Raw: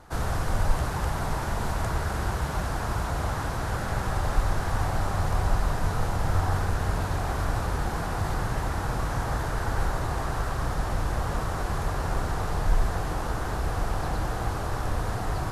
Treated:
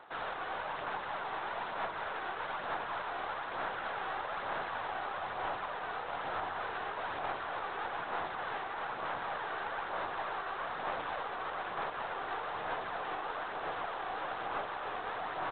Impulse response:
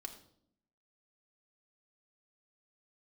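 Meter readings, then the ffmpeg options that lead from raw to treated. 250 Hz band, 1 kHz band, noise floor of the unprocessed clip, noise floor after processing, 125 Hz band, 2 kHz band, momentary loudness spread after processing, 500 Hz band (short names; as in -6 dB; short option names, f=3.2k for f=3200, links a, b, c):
-16.5 dB, -4.0 dB, -31 dBFS, -41 dBFS, -30.0 dB, -3.0 dB, 1 LU, -7.0 dB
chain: -filter_complex "[0:a]highpass=570,alimiter=level_in=3.5dB:limit=-24dB:level=0:latency=1:release=132,volume=-3.5dB,aphaser=in_gain=1:out_gain=1:delay=2.7:decay=0.33:speed=1.1:type=sinusoidal,asplit=2[a][b];[b]aecho=0:1:268:0.178[c];[a][c]amix=inputs=2:normalize=0,aeval=exprs='0.0668*(cos(1*acos(clip(val(0)/0.0668,-1,1)))-cos(1*PI/2))+0.0119*(cos(2*acos(clip(val(0)/0.0668,-1,1)))-cos(2*PI/2))':c=same,volume=-1.5dB" -ar 8000 -c:a adpcm_g726 -b:a 24k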